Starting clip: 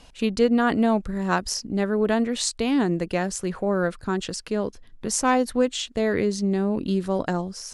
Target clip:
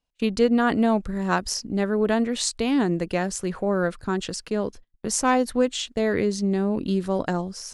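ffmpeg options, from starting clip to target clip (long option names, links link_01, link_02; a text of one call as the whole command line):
ffmpeg -i in.wav -af "agate=range=-32dB:threshold=-39dB:ratio=16:detection=peak" out.wav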